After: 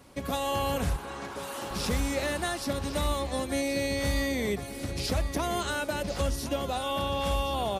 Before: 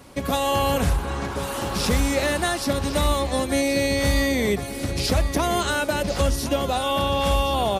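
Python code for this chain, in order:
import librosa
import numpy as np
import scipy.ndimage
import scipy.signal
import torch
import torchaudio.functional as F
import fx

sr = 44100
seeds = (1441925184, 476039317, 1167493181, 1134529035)

y = fx.highpass(x, sr, hz=290.0, slope=6, at=(0.96, 1.71))
y = F.gain(torch.from_numpy(y), -7.5).numpy()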